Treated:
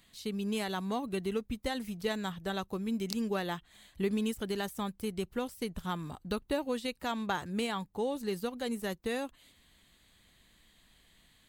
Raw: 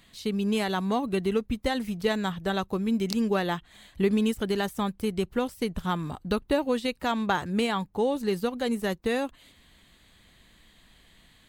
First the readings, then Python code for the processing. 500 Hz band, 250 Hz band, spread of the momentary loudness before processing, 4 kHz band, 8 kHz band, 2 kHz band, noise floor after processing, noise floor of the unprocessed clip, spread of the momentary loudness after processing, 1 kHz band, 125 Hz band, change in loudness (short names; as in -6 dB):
-7.5 dB, -7.5 dB, 5 LU, -5.5 dB, -3.0 dB, -7.0 dB, -66 dBFS, -59 dBFS, 5 LU, -7.5 dB, -7.5 dB, -7.0 dB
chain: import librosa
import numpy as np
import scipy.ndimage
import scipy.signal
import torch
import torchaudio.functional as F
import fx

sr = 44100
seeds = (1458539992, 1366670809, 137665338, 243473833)

y = fx.high_shelf(x, sr, hz=5000.0, db=6.0)
y = y * 10.0 ** (-7.5 / 20.0)